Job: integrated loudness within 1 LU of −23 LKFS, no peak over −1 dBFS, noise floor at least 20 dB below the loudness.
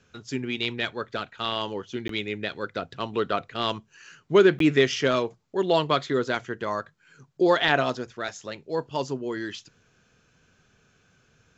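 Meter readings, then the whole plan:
number of dropouts 2; longest dropout 13 ms; integrated loudness −26.0 LKFS; sample peak −6.0 dBFS; target loudness −23.0 LKFS
→ repair the gap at 0:02.08/0:04.59, 13 ms
level +3 dB

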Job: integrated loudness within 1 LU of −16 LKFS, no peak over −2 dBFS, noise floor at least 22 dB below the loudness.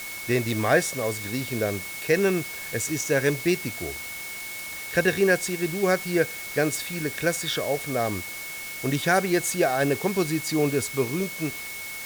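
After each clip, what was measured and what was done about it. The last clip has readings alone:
interfering tone 2,200 Hz; level of the tone −36 dBFS; background noise floor −36 dBFS; target noise floor −48 dBFS; integrated loudness −25.5 LKFS; sample peak −8.5 dBFS; target loudness −16.0 LKFS
→ notch filter 2,200 Hz, Q 30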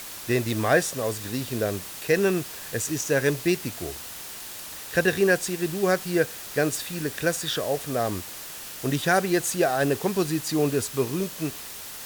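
interfering tone none found; background noise floor −39 dBFS; target noise floor −48 dBFS
→ broadband denoise 9 dB, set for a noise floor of −39 dBFS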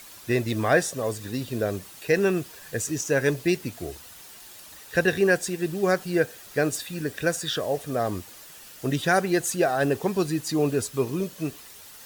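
background noise floor −46 dBFS; target noise floor −48 dBFS
→ broadband denoise 6 dB, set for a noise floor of −46 dBFS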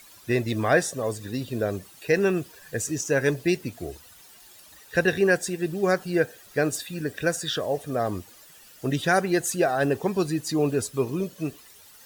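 background noise floor −51 dBFS; integrated loudness −26.0 LKFS; sample peak −9.0 dBFS; target loudness −16.0 LKFS
→ level +10 dB
brickwall limiter −2 dBFS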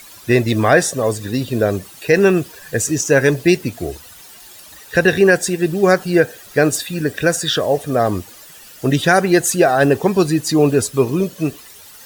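integrated loudness −16.5 LKFS; sample peak −2.0 dBFS; background noise floor −41 dBFS

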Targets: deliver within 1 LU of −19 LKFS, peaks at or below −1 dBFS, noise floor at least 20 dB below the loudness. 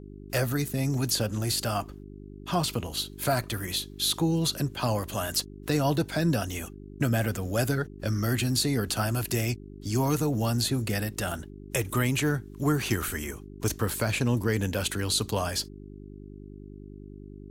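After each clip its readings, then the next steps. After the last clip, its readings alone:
mains hum 50 Hz; hum harmonics up to 400 Hz; level of the hum −43 dBFS; integrated loudness −28.0 LKFS; sample peak −13.5 dBFS; target loudness −19.0 LKFS
→ hum removal 50 Hz, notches 8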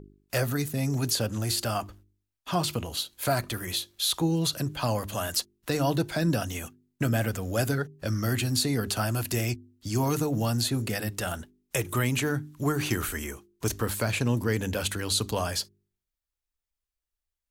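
mains hum none found; integrated loudness −28.5 LKFS; sample peak −13.5 dBFS; target loudness −19.0 LKFS
→ level +9.5 dB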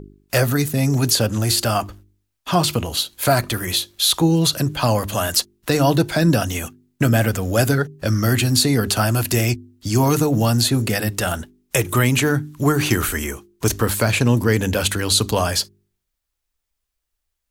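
integrated loudness −19.0 LKFS; sample peak −4.0 dBFS; background noise floor −78 dBFS

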